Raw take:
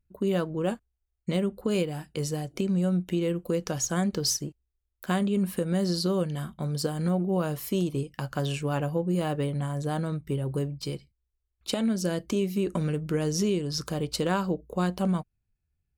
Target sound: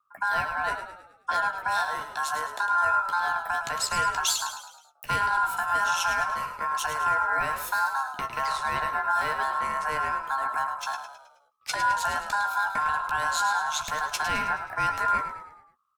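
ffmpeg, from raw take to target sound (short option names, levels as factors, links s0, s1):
-filter_complex "[0:a]acrossover=split=290|1200[s0][s1][s2];[s1]alimiter=level_in=1.68:limit=0.0631:level=0:latency=1,volume=0.596[s3];[s0][s3][s2]amix=inputs=3:normalize=0,aeval=exprs='val(0)*sin(2*PI*1400*n/s)':c=same,afreqshift=-180,asplit=2[s4][s5];[s5]adelay=15,volume=0.376[s6];[s4][s6]amix=inputs=2:normalize=0,asplit=6[s7][s8][s9][s10][s11][s12];[s8]adelay=106,afreqshift=-44,volume=0.355[s13];[s9]adelay=212,afreqshift=-88,volume=0.166[s14];[s10]adelay=318,afreqshift=-132,volume=0.0785[s15];[s11]adelay=424,afreqshift=-176,volume=0.0367[s16];[s12]adelay=530,afreqshift=-220,volume=0.0174[s17];[s7][s13][s14][s15][s16][s17]amix=inputs=6:normalize=0,volume=1.5"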